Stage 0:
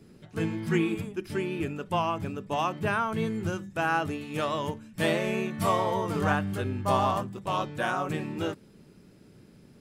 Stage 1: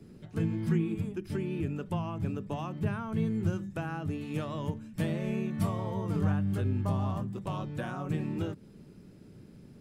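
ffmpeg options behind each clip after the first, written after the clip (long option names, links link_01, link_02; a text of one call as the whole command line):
ffmpeg -i in.wav -filter_complex "[0:a]lowshelf=frequency=410:gain=7.5,acrossover=split=230[link_01][link_02];[link_02]acompressor=threshold=-32dB:ratio=10[link_03];[link_01][link_03]amix=inputs=2:normalize=0,volume=-3.5dB" out.wav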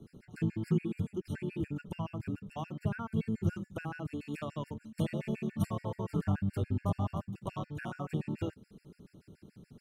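ffmpeg -i in.wav -af "afftfilt=real='re*gt(sin(2*PI*7*pts/sr)*(1-2*mod(floor(b*sr/1024/1400),2)),0)':imag='im*gt(sin(2*PI*7*pts/sr)*(1-2*mod(floor(b*sr/1024/1400),2)),0)':win_size=1024:overlap=0.75" out.wav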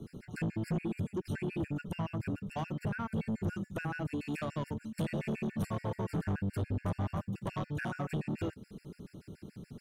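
ffmpeg -i in.wav -filter_complex "[0:a]asplit=2[link_01][link_02];[link_02]acompressor=threshold=-38dB:ratio=6,volume=1.5dB[link_03];[link_01][link_03]amix=inputs=2:normalize=0,asoftclip=type=tanh:threshold=-28dB" out.wav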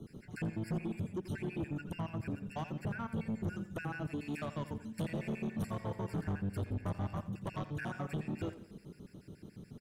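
ffmpeg -i in.wav -af "aecho=1:1:86|172|258|344:0.188|0.0885|0.0416|0.0196,volume=-3dB" out.wav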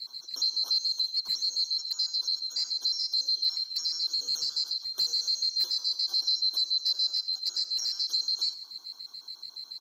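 ffmpeg -i in.wav -af "afftfilt=real='real(if(lt(b,736),b+184*(1-2*mod(floor(b/184),2)),b),0)':imag='imag(if(lt(b,736),b+184*(1-2*mod(floor(b/184),2)),b),0)':win_size=2048:overlap=0.75,volume=8.5dB" out.wav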